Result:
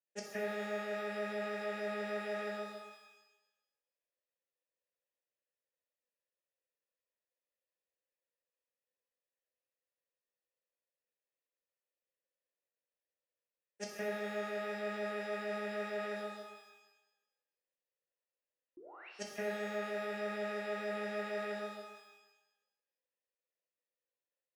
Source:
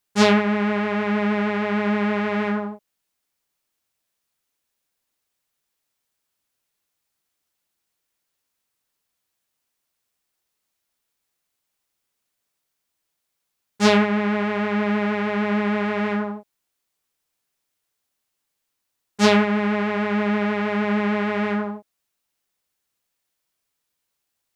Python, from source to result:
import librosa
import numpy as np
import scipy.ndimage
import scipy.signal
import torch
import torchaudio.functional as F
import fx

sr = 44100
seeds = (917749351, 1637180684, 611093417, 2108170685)

y = scipy.signal.sosfilt(scipy.signal.butter(2, 190.0, 'highpass', fs=sr, output='sos'), x)
y = fx.noise_reduce_blind(y, sr, reduce_db=28)
y = fx.vowel_filter(y, sr, vowel='e')
y = fx.high_shelf(y, sr, hz=2000.0, db=-11.5)
y = fx.spec_paint(y, sr, seeds[0], shape='rise', start_s=18.77, length_s=0.32, low_hz=320.0, high_hz=2900.0, level_db=-49.0)
y = fx.over_compress(y, sr, threshold_db=-60.0, ratio=-0.5)
y = fx.rev_shimmer(y, sr, seeds[1], rt60_s=1.0, semitones=12, shimmer_db=-8, drr_db=0.5)
y = y * librosa.db_to_amplitude(17.5)